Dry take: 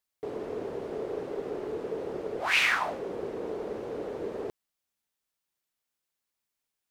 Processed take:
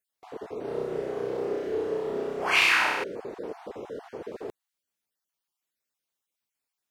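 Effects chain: random spectral dropouts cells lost 24%; low shelf 89 Hz -8 dB; 0.61–3.04 flutter echo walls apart 5.5 m, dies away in 1.2 s

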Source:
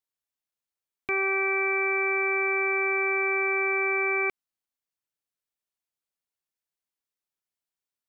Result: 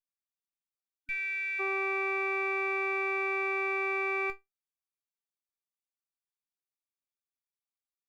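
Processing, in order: minimum comb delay 0.83 ms; resonator 390 Hz, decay 0.16 s, harmonics all, mix 80%; spectral gain 0.96–1.6, 280–1500 Hz -30 dB

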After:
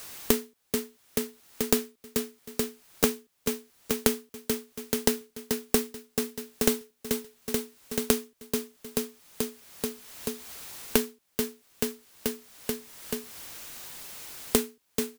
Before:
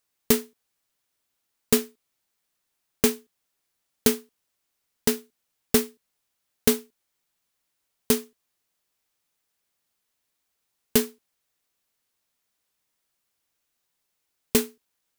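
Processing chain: soft clip -9 dBFS, distortion -17 dB; on a send: feedback echo 0.434 s, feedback 48%, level -14 dB; on the sum: three-band squash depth 100%; gain +5 dB

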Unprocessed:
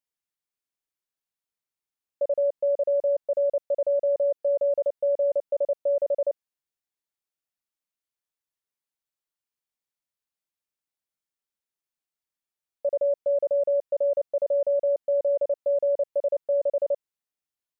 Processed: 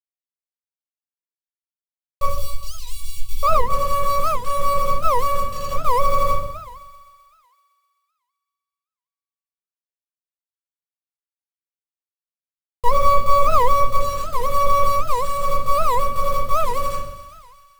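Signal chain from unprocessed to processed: minimum comb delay 0.7 ms; random-step tremolo, depth 75%; bit-crush 7-bit; 2.26–3.43 inverse Chebyshev band-stop 310–810 Hz, stop band 80 dB; thinning echo 0.128 s, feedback 74%, high-pass 480 Hz, level -13.5 dB; shoebox room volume 960 m³, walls furnished, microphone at 6.6 m; record warp 78 rpm, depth 250 cents; gain +2.5 dB

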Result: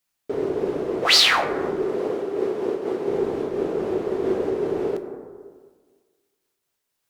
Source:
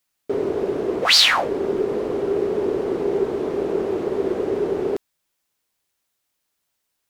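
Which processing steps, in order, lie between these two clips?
1.86–3.08 HPF 240 Hz 6 dB/oct; plate-style reverb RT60 1.7 s, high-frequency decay 0.3×, DRR 6 dB; noise-modulated level, depth 55%

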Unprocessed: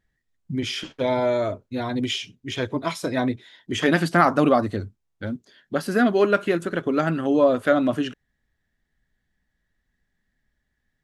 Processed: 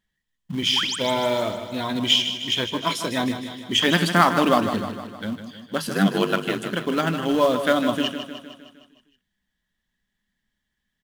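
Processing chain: high shelf 2100 Hz +9 dB; notches 50/100/150/200 Hz; 5.88–6.71 ring modulator 49 Hz; in parallel at -4.5 dB: companded quantiser 4-bit; on the sum: thirty-one-band EQ 200 Hz +11 dB, 1000 Hz +7 dB, 3150 Hz +9 dB; 0.76–0.96 painted sound rise 760–9300 Hz -22 dBFS; on a send: feedback echo 0.154 s, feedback 57%, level -9.5 dB; on the sum: gain -7.5 dB

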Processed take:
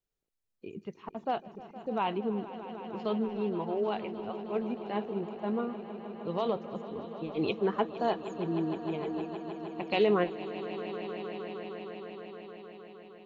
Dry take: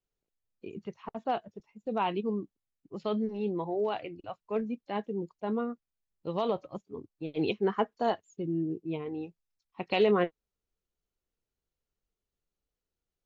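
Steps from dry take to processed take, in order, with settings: 2.15–3.05 treble ducked by the level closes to 1900 Hz, closed at -30.5 dBFS; swelling echo 0.155 s, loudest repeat 5, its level -16 dB; gain -1 dB

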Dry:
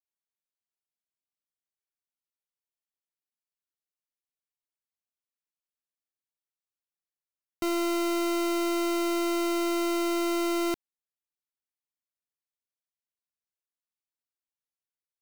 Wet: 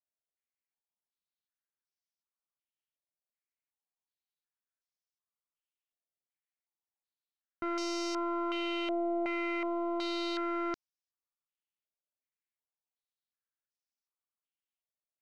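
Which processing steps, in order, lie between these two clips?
stepped low-pass 2.7 Hz 640–5500 Hz; gain -8 dB

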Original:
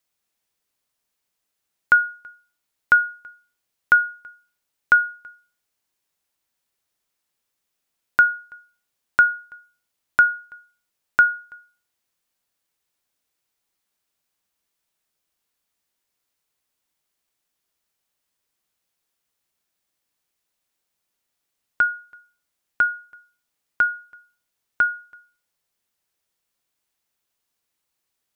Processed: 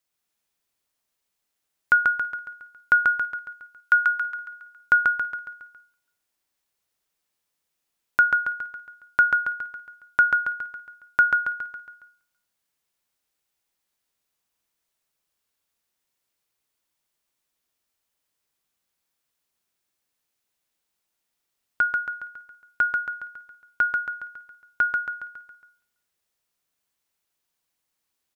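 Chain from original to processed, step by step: 3.07–4.23 HPF 1000 Hz 24 dB/oct; on a send: feedback echo 0.138 s, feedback 49%, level -3.5 dB; on the sum: gain -3 dB

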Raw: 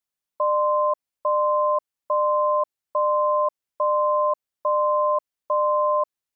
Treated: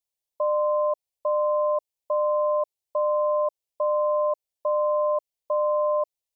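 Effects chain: fixed phaser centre 580 Hz, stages 4

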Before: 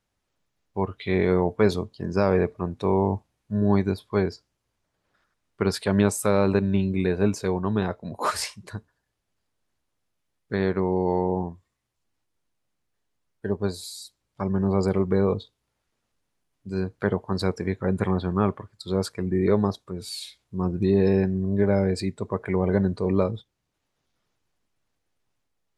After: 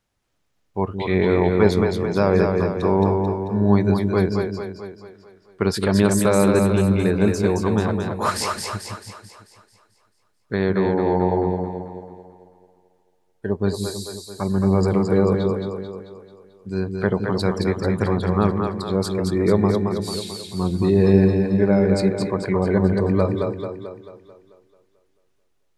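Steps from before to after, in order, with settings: split-band echo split 340 Hz, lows 0.165 s, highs 0.22 s, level -4 dB; gain +3 dB

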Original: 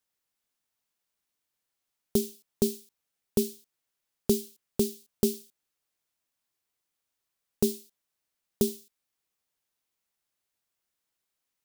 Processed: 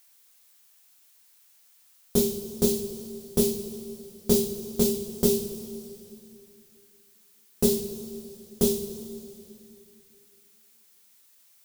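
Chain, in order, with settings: two-slope reverb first 0.32 s, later 2.8 s, from -18 dB, DRR -7.5 dB; added noise blue -58 dBFS; gain -1.5 dB

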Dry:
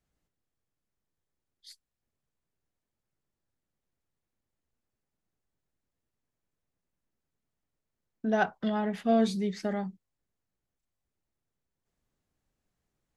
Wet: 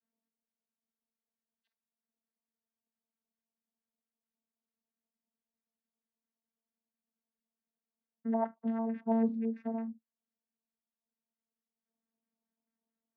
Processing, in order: LFO low-pass square 4.5 Hz 810–1900 Hz; vocoder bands 16, saw 226 Hz; gain -6 dB

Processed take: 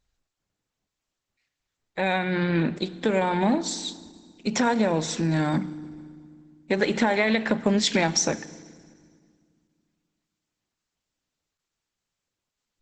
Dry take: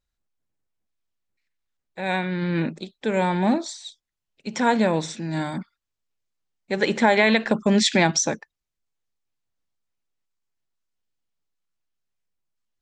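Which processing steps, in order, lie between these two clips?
notches 60/120/180 Hz; compressor 4:1, threshold -27 dBFS, peak gain reduction 12.5 dB; FDN reverb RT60 1.9 s, low-frequency decay 1.45×, high-frequency decay 0.9×, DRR 15 dB; gain +7 dB; Opus 12 kbps 48000 Hz

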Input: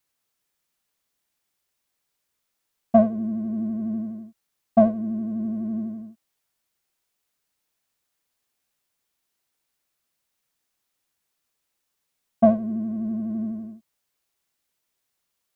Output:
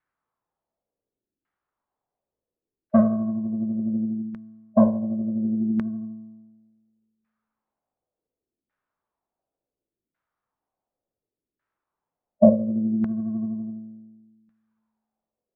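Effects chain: resonator 55 Hz, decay 1.4 s, harmonics all, mix 70%; LFO low-pass saw down 0.69 Hz 340–1800 Hz; formant shift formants -2 st; gain +6.5 dB

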